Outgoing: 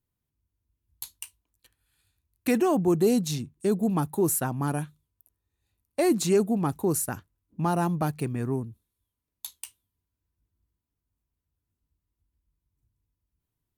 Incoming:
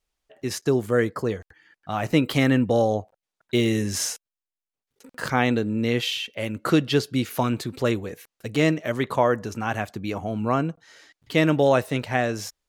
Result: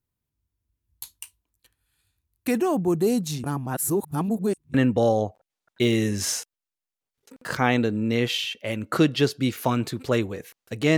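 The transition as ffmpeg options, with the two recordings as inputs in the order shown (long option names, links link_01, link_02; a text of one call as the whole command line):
ffmpeg -i cue0.wav -i cue1.wav -filter_complex "[0:a]apad=whole_dur=10.97,atrim=end=10.97,asplit=2[link_01][link_02];[link_01]atrim=end=3.442[link_03];[link_02]atrim=start=3.438:end=4.742,asetpts=PTS-STARTPTS,areverse[link_04];[1:a]atrim=start=2.468:end=8.7[link_05];[link_03][link_04]acrossfade=duration=0.004:curve1=hsin:curve2=hsin[link_06];[link_06][link_05]acrossfade=duration=0.004:curve1=hsin:curve2=hsin" out.wav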